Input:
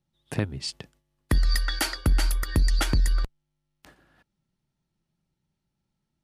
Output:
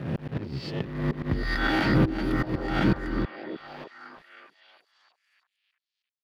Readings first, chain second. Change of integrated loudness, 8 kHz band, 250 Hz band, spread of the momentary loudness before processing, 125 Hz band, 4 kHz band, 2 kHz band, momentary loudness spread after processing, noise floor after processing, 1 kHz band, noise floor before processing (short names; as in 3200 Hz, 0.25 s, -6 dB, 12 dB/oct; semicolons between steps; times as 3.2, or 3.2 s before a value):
-0.5 dB, under -15 dB, +9.0 dB, 10 LU, 0.0 dB, -5.5 dB, +4.0 dB, 20 LU, under -85 dBFS, +5.5 dB, -81 dBFS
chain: spectral swells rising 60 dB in 0.83 s; HPF 110 Hz 12 dB/oct; low shelf 430 Hz +7 dB; auto swell 0.553 s; limiter -19 dBFS, peak gain reduction 10.5 dB; companded quantiser 4-bit; air absorption 350 m; delay with a stepping band-pass 0.312 s, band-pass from 310 Hz, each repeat 0.7 oct, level -4 dB; gain +7.5 dB